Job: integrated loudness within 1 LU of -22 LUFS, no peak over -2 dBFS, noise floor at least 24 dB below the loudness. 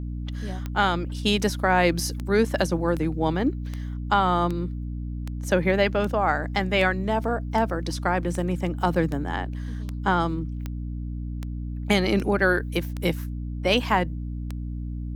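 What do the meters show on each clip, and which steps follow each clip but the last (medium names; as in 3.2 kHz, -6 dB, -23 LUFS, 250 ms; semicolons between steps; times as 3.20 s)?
clicks found 19; hum 60 Hz; highest harmonic 300 Hz; hum level -28 dBFS; loudness -25.5 LUFS; peak level -7.0 dBFS; loudness target -22.0 LUFS
-> de-click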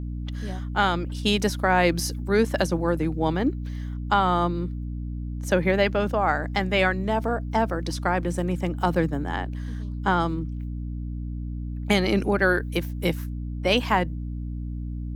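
clicks found 0; hum 60 Hz; highest harmonic 300 Hz; hum level -28 dBFS
-> hum notches 60/120/180/240/300 Hz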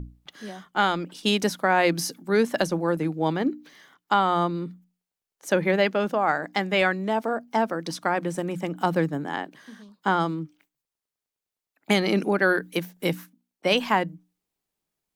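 hum not found; loudness -25.0 LUFS; peak level -7.0 dBFS; loudness target -22.0 LUFS
-> trim +3 dB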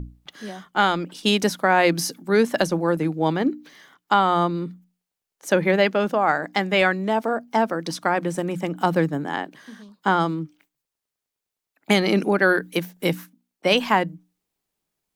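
loudness -22.0 LUFS; peak level -4.0 dBFS; noise floor -86 dBFS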